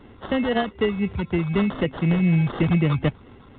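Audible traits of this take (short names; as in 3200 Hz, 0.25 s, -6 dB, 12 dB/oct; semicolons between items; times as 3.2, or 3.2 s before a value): phasing stages 12, 4 Hz, lowest notch 560–2800 Hz; aliases and images of a low sample rate 2400 Hz, jitter 0%; µ-law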